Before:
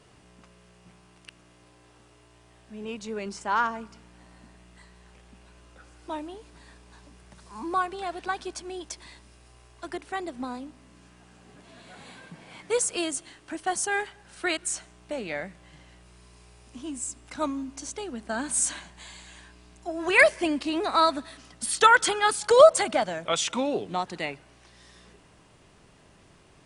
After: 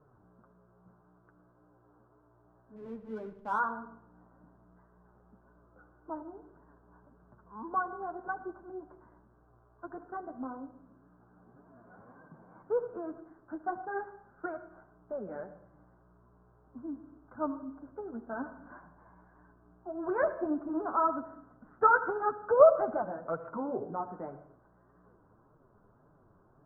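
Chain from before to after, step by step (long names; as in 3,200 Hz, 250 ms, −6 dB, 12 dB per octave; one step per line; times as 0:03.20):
Chebyshev low-pass filter 1,500 Hz, order 6
0:02.76–0:03.59: slack as between gear wheels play −43.5 dBFS
flanger 1.8 Hz, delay 6.2 ms, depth 4.4 ms, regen +17%
convolution reverb RT60 0.70 s, pre-delay 65 ms, DRR 12.5 dB
level −2.5 dB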